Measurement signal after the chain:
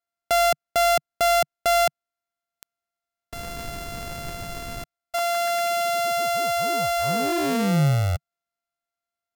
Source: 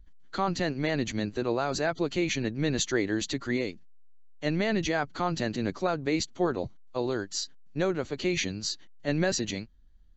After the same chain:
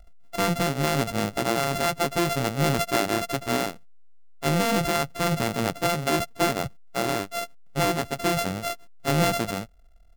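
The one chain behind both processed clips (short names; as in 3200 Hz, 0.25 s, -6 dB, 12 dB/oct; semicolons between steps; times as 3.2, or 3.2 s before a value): sample sorter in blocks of 64 samples; dynamic EQ 150 Hz, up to +7 dB, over -47 dBFS, Q 1.9; gain +3 dB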